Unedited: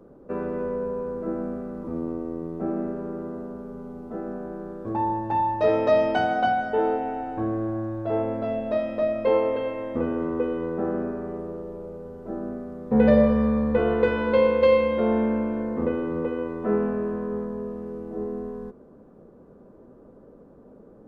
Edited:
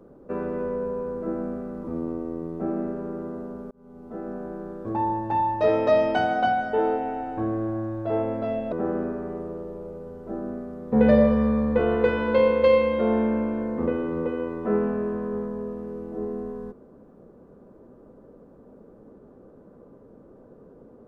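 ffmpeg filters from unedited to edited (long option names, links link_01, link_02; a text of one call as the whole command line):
ffmpeg -i in.wav -filter_complex "[0:a]asplit=3[link_01][link_02][link_03];[link_01]atrim=end=3.71,asetpts=PTS-STARTPTS,afade=type=out:start_time=3.706:duration=0.004:curve=hsin[link_04];[link_02]atrim=start=3.71:end=8.722,asetpts=PTS-STARTPTS,afade=type=in:duration=0.82:curve=qsin[link_05];[link_03]atrim=start=10.708[link_06];[link_04][link_05]concat=n=2:v=0:a=1[link_07];[link_07][link_06]acrossfade=duration=0.004:curve1=hsin:curve2=hsin" out.wav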